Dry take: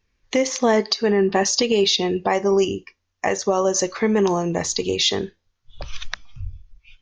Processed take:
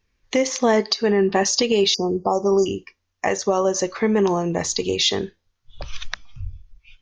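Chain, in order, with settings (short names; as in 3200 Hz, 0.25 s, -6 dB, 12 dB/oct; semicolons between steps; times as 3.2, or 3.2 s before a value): 1.94–2.66 brick-wall FIR band-stop 1400–4600 Hz; 3.58–4.59 high shelf 4600 Hz -6 dB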